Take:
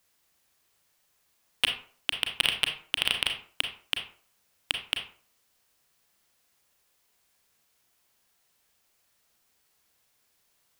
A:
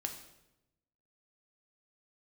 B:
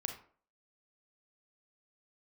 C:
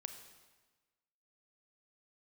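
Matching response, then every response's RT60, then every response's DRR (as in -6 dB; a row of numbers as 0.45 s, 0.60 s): B; 0.90 s, 0.45 s, 1.3 s; 3.5 dB, 4.0 dB, 7.0 dB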